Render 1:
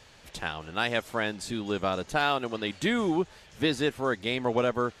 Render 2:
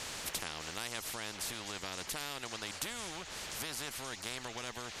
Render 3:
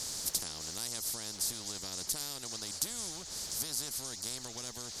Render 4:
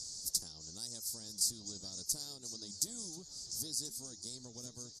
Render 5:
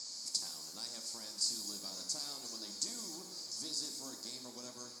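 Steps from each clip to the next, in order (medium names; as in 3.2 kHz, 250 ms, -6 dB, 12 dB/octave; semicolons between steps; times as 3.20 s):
compression 2.5:1, threshold -40 dBFS, peak gain reduction 13 dB; spectrum-flattening compressor 4:1; trim +1 dB
FFT filter 230 Hz 0 dB, 2.7 kHz -11 dB, 4.8 kHz +7 dB
delay 1034 ms -9 dB; spectral contrast expander 2.5:1; trim -1.5 dB
cabinet simulation 340–6500 Hz, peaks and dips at 440 Hz -9 dB, 1.1 kHz +6 dB, 2.3 kHz +9 dB, 3.5 kHz -6 dB, 5.9 kHz -10 dB; pitch-shifted reverb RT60 1.2 s, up +7 st, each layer -8 dB, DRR 3.5 dB; trim +5.5 dB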